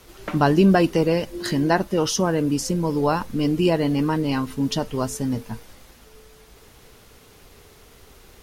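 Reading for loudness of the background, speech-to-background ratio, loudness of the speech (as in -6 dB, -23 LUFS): -38.5 LUFS, 17.0 dB, -21.5 LUFS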